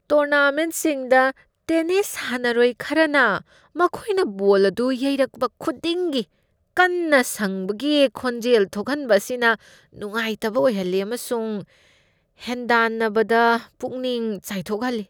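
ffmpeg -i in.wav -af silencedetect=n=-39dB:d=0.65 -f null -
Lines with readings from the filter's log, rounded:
silence_start: 11.64
silence_end: 12.41 | silence_duration: 0.77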